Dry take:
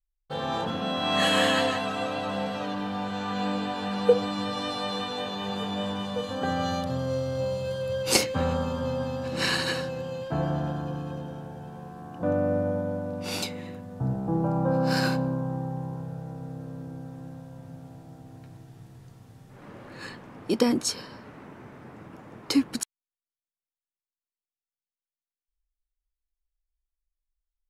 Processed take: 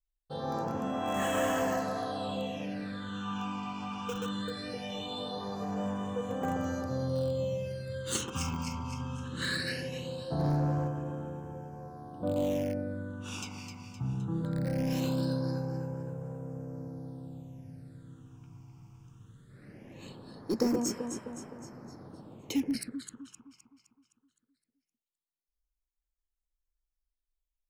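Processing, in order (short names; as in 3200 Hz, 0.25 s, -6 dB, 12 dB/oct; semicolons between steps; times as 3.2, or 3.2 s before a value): echo with dull and thin repeats by turns 0.129 s, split 1300 Hz, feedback 70%, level -4.5 dB; in parallel at -11 dB: wrapped overs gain 17.5 dB; on the sum: phaser stages 8, 0.2 Hz, lowest notch 520–4200 Hz; 10.39–10.88 sample leveller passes 1; gain -7.5 dB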